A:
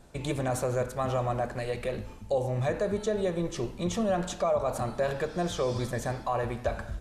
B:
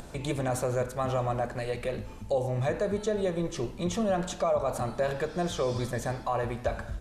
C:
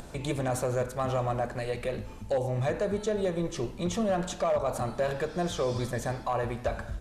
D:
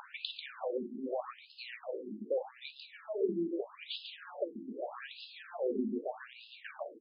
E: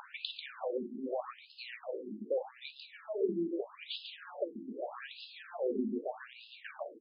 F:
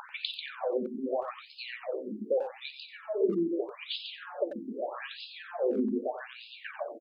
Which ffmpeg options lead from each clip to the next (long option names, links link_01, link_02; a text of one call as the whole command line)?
ffmpeg -i in.wav -af "acompressor=mode=upward:threshold=-34dB:ratio=2.5" out.wav
ffmpeg -i in.wav -af "asoftclip=type=hard:threshold=-21dB" out.wav
ffmpeg -i in.wav -filter_complex "[0:a]aecho=1:1:142:0.473,acrossover=split=340|3000[link_01][link_02][link_03];[link_02]acompressor=threshold=-42dB:ratio=4[link_04];[link_01][link_04][link_03]amix=inputs=3:normalize=0,afftfilt=real='re*between(b*sr/1024,260*pow(3700/260,0.5+0.5*sin(2*PI*0.81*pts/sr))/1.41,260*pow(3700/260,0.5+0.5*sin(2*PI*0.81*pts/sr))*1.41)':imag='im*between(b*sr/1024,260*pow(3700/260,0.5+0.5*sin(2*PI*0.81*pts/sr))/1.41,260*pow(3700/260,0.5+0.5*sin(2*PI*0.81*pts/sr))*1.41)':win_size=1024:overlap=0.75,volume=5dB" out.wav
ffmpeg -i in.wav -af anull out.wav
ffmpeg -i in.wav -filter_complex "[0:a]asplit=2[link_01][link_02];[link_02]adelay=90,highpass=300,lowpass=3400,asoftclip=type=hard:threshold=-28dB,volume=-10dB[link_03];[link_01][link_03]amix=inputs=2:normalize=0,volume=5dB" out.wav